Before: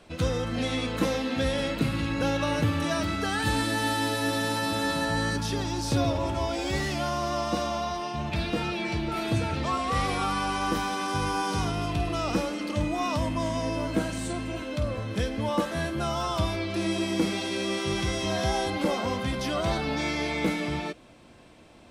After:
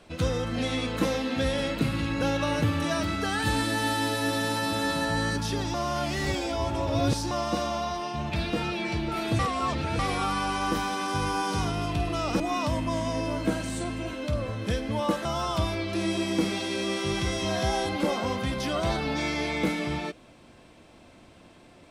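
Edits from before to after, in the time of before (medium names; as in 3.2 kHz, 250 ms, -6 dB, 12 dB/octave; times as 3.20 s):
5.74–7.31 s: reverse
9.39–9.99 s: reverse
12.40–12.89 s: delete
15.74–16.06 s: delete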